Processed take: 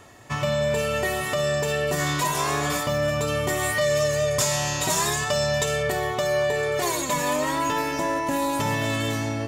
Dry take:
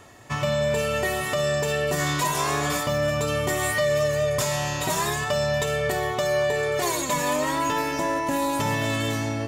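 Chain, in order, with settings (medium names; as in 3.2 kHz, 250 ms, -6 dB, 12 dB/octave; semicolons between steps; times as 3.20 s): 3.81–5.83 s: peaking EQ 6.6 kHz +6 dB 1.5 oct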